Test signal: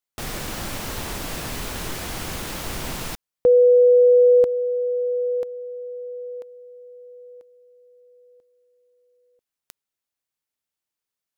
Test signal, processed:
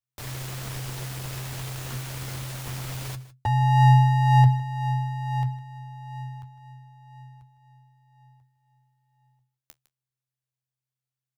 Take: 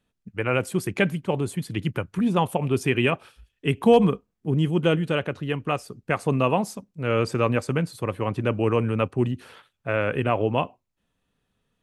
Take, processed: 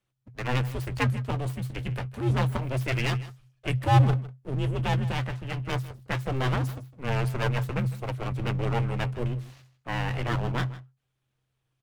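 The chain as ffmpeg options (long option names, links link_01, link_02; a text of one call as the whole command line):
ffmpeg -i in.wav -filter_complex "[0:a]flanger=delay=6:depth=7.8:regen=45:speed=0.26:shape=triangular,aeval=exprs='abs(val(0))':channel_layout=same,afreqshift=-130,asplit=2[link_01][link_02];[link_02]aecho=0:1:156:0.133[link_03];[link_01][link_03]amix=inputs=2:normalize=0" out.wav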